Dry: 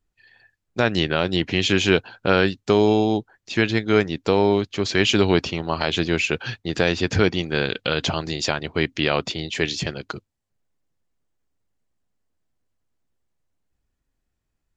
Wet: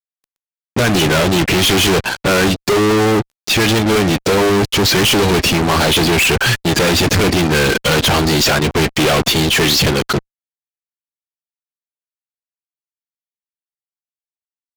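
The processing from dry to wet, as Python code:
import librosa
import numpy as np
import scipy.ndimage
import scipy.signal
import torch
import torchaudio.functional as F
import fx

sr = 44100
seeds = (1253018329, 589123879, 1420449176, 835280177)

y = fx.spec_quant(x, sr, step_db=15)
y = fx.fuzz(y, sr, gain_db=41.0, gate_db=-45.0)
y = y * librosa.db_to_amplitude(1.5)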